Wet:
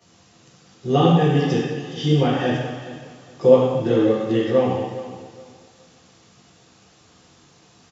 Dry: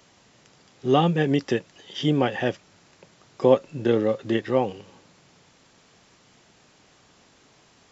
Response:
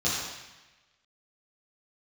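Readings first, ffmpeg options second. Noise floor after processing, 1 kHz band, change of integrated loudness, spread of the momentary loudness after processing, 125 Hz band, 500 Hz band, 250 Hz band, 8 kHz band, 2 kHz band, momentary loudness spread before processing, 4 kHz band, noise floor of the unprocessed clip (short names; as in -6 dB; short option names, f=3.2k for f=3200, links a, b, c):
-54 dBFS, +3.0 dB, +4.0 dB, 18 LU, +7.5 dB, +4.5 dB, +4.5 dB, n/a, +1.0 dB, 9 LU, +3.0 dB, -58 dBFS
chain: -filter_complex "[0:a]aecho=1:1:418|836|1254:0.178|0.0462|0.012[a];[1:a]atrim=start_sample=2205[b];[a][b]afir=irnorm=-1:irlink=0,volume=-9dB"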